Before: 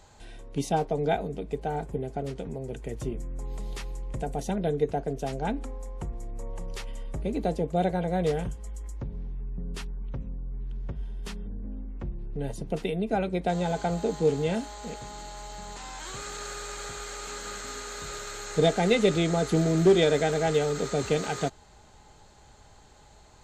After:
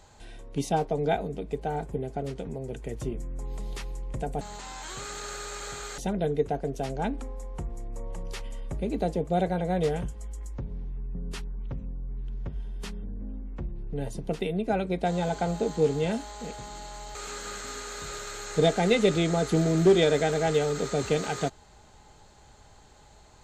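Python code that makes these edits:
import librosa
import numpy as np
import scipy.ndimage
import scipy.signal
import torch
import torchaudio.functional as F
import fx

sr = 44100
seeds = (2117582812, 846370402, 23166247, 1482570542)

y = fx.edit(x, sr, fx.move(start_s=15.58, length_s=1.57, to_s=4.41), tone=tone)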